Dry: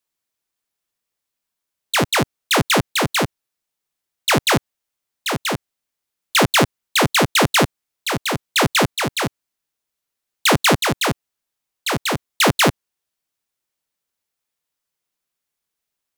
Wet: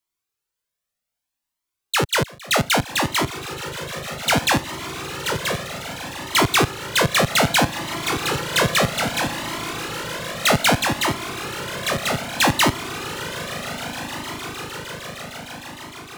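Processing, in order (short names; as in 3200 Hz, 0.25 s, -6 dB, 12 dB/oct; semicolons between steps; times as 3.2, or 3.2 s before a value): swelling echo 0.153 s, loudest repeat 8, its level -18 dB; cascading flanger rising 0.63 Hz; gain +2.5 dB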